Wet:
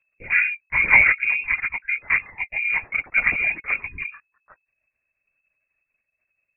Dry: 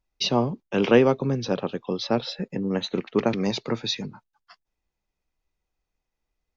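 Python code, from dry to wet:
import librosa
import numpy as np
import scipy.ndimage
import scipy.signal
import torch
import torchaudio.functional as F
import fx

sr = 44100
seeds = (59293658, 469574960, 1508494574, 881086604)

y = fx.freq_invert(x, sr, carrier_hz=2600)
y = fx.lpc_vocoder(y, sr, seeds[0], excitation='whisper', order=16)
y = fx.spec_erase(y, sr, start_s=3.87, length_s=0.2, low_hz=440.0, high_hz=960.0)
y = y * 10.0 ** (2.5 / 20.0)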